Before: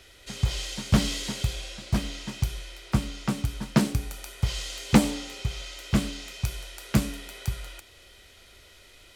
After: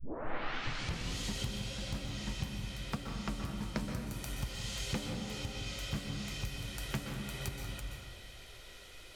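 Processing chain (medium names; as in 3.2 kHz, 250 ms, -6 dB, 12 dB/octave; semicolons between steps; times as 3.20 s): tape start-up on the opening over 1.18 s; compression 5:1, threshold -35 dBFS, peak gain reduction 20.5 dB; flange 0.95 Hz, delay 0.8 ms, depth 8.9 ms, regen +70%; on a send: reverberation RT60 1.7 s, pre-delay 120 ms, DRR 2 dB; on the sum: trim +2.5 dB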